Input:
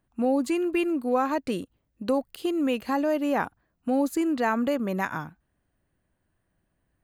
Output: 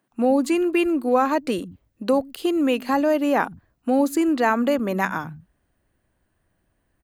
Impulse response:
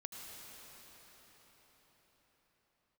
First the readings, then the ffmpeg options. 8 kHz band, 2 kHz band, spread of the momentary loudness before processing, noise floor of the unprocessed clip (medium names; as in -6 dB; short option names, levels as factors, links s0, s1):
+5.5 dB, +5.5 dB, 10 LU, -75 dBFS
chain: -filter_complex "[0:a]acrossover=split=160[s0][s1];[s0]adelay=110[s2];[s2][s1]amix=inputs=2:normalize=0,volume=1.88"